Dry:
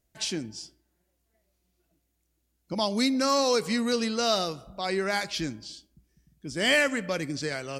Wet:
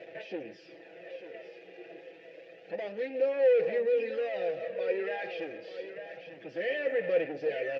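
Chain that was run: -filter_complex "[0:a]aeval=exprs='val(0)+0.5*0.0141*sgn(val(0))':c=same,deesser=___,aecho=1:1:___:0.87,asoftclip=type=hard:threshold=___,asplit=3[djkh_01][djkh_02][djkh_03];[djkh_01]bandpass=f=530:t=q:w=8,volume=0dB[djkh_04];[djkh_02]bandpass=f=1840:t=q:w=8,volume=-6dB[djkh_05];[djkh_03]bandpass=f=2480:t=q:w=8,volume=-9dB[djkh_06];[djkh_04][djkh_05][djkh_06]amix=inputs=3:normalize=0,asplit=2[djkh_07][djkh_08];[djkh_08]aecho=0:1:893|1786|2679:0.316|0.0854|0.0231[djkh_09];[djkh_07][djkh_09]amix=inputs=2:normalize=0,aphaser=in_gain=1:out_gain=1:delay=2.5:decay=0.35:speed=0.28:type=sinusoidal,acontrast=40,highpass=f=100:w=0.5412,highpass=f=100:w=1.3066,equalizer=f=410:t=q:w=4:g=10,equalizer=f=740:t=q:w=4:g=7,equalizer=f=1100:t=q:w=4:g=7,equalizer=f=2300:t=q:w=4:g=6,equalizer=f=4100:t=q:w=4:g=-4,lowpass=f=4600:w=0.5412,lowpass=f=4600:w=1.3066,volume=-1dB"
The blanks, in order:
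0.8, 6.1, -29.5dB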